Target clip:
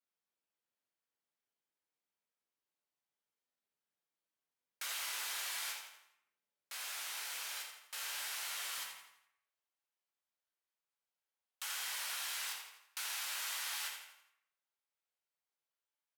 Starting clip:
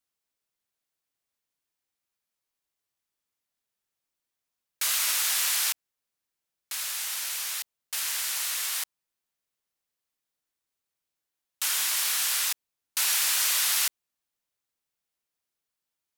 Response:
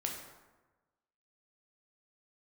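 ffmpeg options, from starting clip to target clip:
-filter_complex "[0:a]asetnsamples=nb_out_samples=441:pad=0,asendcmd='8.78 highpass f 520',highpass=170,highshelf=frequency=3600:gain=-8.5,acompressor=threshold=-33dB:ratio=6,aecho=1:1:83|166|249|332|415:0.376|0.162|0.0695|0.0299|0.0128[link_01];[1:a]atrim=start_sample=2205,asetrate=70560,aresample=44100[link_02];[link_01][link_02]afir=irnorm=-1:irlink=0,volume=-2dB"

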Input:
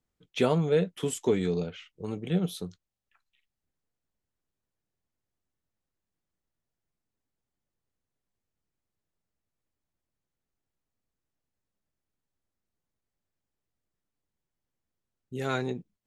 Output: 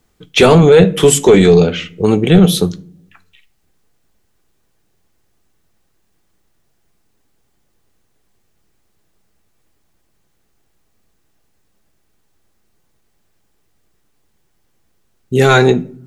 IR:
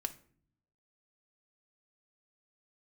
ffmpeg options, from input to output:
-filter_complex "[0:a]asplit=2[link_01][link_02];[1:a]atrim=start_sample=2205,lowshelf=frequency=64:gain=-4[link_03];[link_02][link_03]afir=irnorm=-1:irlink=0,volume=3dB[link_04];[link_01][link_04]amix=inputs=2:normalize=0,apsyclip=17dB,volume=-1.5dB"

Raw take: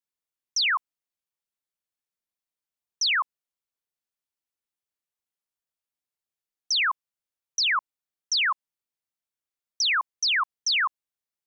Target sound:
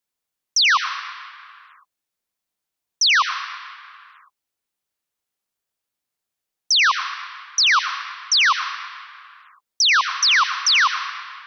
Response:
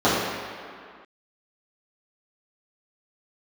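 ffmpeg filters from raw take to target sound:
-filter_complex "[0:a]asplit=2[link_01][link_02];[1:a]atrim=start_sample=2205,highshelf=frequency=3100:gain=10.5,adelay=85[link_03];[link_02][link_03]afir=irnorm=-1:irlink=0,volume=-31.5dB[link_04];[link_01][link_04]amix=inputs=2:normalize=0,volume=7.5dB"

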